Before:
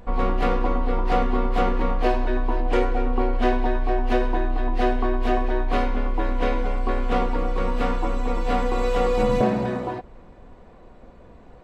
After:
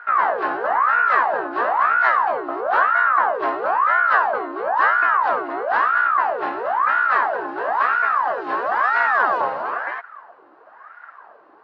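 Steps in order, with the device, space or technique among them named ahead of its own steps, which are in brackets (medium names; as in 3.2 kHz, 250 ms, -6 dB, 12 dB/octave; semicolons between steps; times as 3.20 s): voice changer toy (ring modulator with a swept carrier 870 Hz, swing 65%, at 1 Hz; cabinet simulation 600–4100 Hz, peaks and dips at 710 Hz +3 dB, 1.1 kHz +5 dB, 1.6 kHz +7 dB, 2.3 kHz -7 dB, 3.4 kHz -9 dB); trim +2.5 dB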